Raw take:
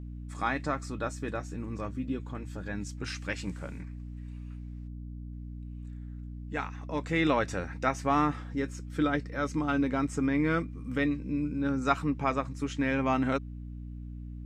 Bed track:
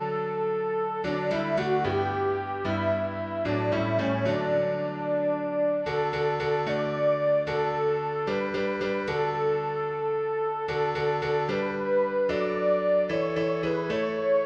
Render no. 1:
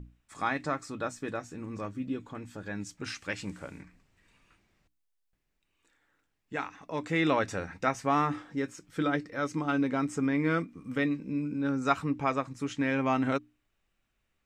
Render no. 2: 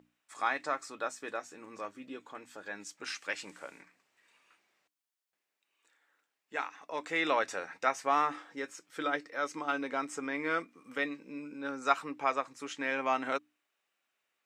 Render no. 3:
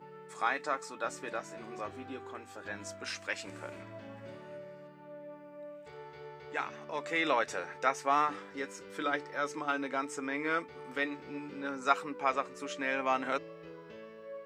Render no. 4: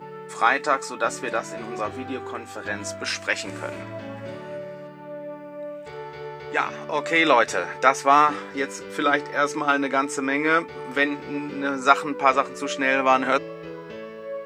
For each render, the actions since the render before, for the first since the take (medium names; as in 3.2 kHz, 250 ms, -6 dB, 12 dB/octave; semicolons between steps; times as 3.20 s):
hum notches 60/120/180/240/300 Hz
high-pass 520 Hz 12 dB/octave
add bed track -21.5 dB
trim +12 dB; peak limiter -2 dBFS, peak gain reduction 1.5 dB